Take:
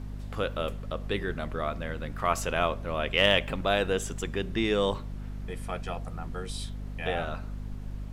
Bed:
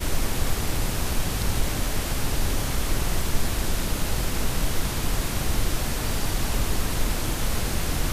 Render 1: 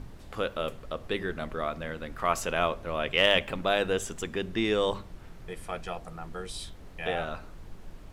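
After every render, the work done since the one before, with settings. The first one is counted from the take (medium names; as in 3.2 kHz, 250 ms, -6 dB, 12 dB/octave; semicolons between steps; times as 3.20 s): hum notches 50/100/150/200/250 Hz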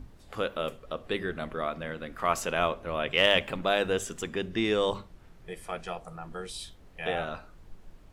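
noise print and reduce 7 dB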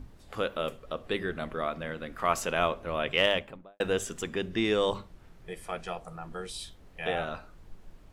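3.09–3.80 s: studio fade out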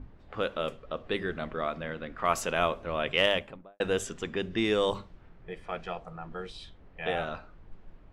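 level-controlled noise filter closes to 2 kHz, open at -23.5 dBFS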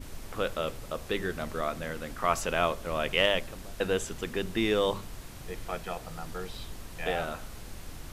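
add bed -18.5 dB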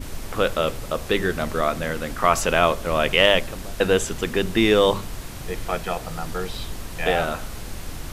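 trim +9.5 dB; peak limiter -3 dBFS, peak gain reduction 2 dB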